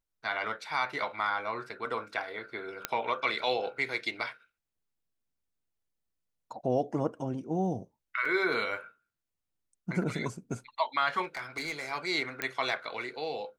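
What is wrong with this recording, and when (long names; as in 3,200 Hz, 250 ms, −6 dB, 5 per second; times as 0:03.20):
0:02.85: click −11 dBFS
0:08.25: drop-out 4.3 ms
0:11.23–0:11.92: clipping −30.5 dBFS
0:12.42: click −14 dBFS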